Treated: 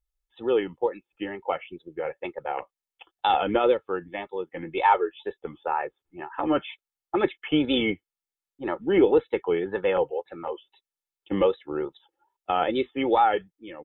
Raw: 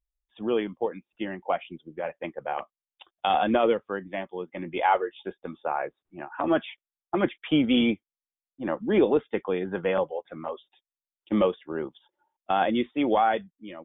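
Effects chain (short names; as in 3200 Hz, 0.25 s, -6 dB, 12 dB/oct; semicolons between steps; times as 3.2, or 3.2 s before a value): wow and flutter 130 cents; comb 2.3 ms, depth 56%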